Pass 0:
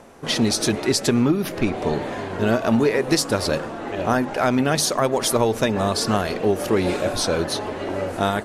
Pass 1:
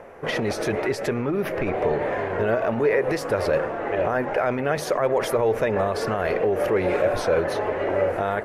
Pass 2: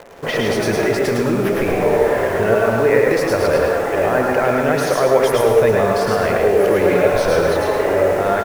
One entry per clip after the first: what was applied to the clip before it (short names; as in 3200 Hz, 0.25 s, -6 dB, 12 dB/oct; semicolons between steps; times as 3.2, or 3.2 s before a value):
high shelf 5500 Hz -5.5 dB; limiter -16 dBFS, peak gain reduction 10 dB; graphic EQ 250/500/2000/4000/8000 Hz -7/+8/+7/-9/-9 dB
in parallel at -4 dB: requantised 6-bit, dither none; on the sum: echo 0.107 s -4 dB; plate-style reverb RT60 0.63 s, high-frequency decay 0.95×, pre-delay 90 ms, DRR 3.5 dB